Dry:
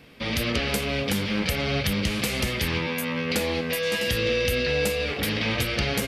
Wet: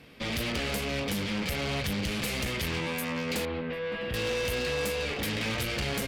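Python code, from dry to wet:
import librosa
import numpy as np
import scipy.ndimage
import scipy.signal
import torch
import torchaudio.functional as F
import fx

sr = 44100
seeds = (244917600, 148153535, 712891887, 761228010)

y = fx.tube_stage(x, sr, drive_db=27.0, bias=0.5)
y = fx.air_absorb(y, sr, metres=440.0, at=(3.45, 4.14))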